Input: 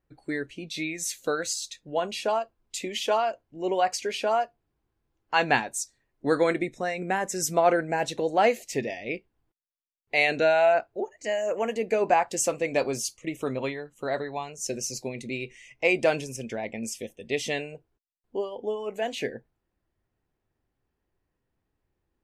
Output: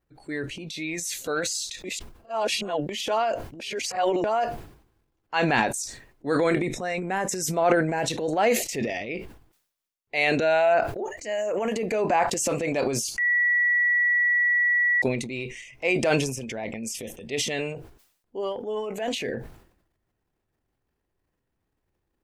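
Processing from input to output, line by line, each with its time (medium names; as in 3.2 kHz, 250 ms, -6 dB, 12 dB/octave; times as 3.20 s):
1.84–2.89 s: reverse
3.60–4.24 s: reverse
13.18–15.02 s: bleep 1.94 kHz -18.5 dBFS
whole clip: transient shaper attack -4 dB, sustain +10 dB; decay stretcher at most 93 dB/s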